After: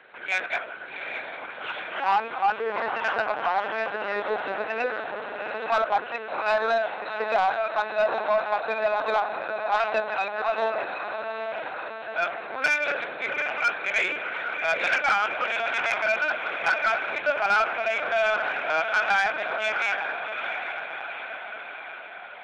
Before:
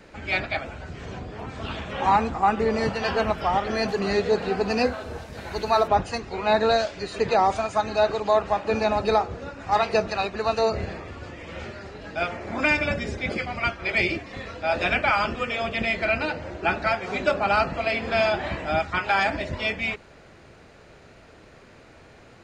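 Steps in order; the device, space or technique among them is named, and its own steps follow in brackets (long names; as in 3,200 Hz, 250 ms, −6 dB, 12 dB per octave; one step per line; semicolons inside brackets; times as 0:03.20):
mains-hum notches 50/100/150/200 Hz
feedback delay with all-pass diffusion 765 ms, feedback 59%, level −7 dB
talking toy (linear-prediction vocoder at 8 kHz pitch kept; high-pass filter 550 Hz 12 dB per octave; parametric band 1,500 Hz +9 dB 0.25 octaves; soft clipping −14.5 dBFS, distortion −16 dB)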